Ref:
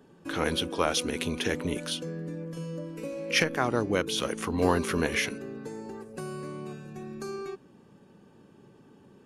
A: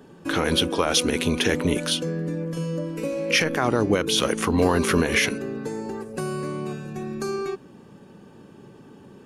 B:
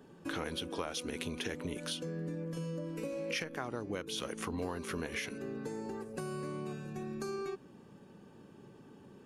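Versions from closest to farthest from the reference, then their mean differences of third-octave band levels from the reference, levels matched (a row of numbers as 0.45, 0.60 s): A, B; 1.5, 5.0 dB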